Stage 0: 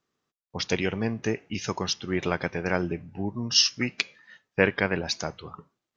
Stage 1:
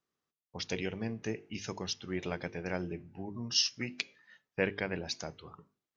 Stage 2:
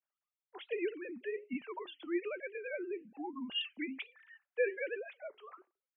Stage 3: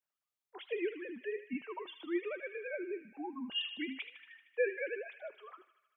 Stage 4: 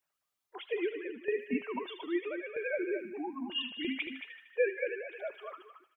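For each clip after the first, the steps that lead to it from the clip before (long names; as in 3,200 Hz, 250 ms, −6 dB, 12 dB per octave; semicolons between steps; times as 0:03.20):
mains-hum notches 50/100/150/200/250/300/350/400/450 Hz; dynamic equaliser 1,200 Hz, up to −6 dB, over −43 dBFS, Q 1.5; level −8 dB
three sine waves on the formant tracks; flanger 1.2 Hz, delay 1.6 ms, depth 5 ms, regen −81%; level +1.5 dB
delay with a high-pass on its return 77 ms, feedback 67%, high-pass 1,800 Hz, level −9 dB
spectral magnitudes quantised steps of 15 dB; shaped tremolo saw down 0.78 Hz, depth 65%; single-tap delay 223 ms −9 dB; level +7.5 dB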